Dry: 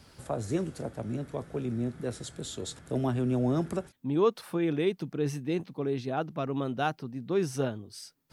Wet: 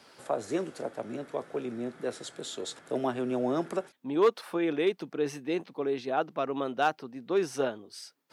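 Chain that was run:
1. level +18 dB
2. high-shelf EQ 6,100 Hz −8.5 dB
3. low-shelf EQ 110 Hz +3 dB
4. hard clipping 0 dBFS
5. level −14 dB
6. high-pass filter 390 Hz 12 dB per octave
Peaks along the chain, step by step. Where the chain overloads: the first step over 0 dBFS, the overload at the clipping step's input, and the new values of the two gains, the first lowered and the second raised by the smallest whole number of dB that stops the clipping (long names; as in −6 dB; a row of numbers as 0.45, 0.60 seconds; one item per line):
+4.0, +4.0, +4.5, 0.0, −14.0, −11.0 dBFS
step 1, 4.5 dB
step 1 +13 dB, step 5 −9 dB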